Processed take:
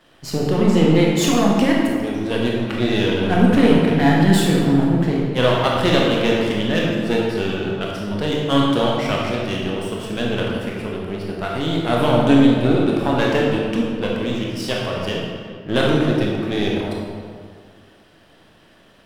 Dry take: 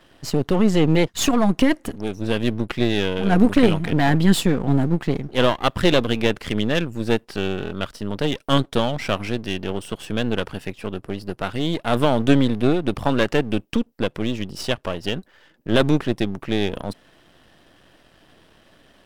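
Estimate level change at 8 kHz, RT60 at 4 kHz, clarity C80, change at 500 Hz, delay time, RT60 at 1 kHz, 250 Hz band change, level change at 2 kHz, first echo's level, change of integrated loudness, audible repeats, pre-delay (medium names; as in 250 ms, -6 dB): +1.0 dB, 1.2 s, 1.5 dB, +3.0 dB, no echo, 1.9 s, +3.0 dB, +2.5 dB, no echo, +3.0 dB, no echo, 18 ms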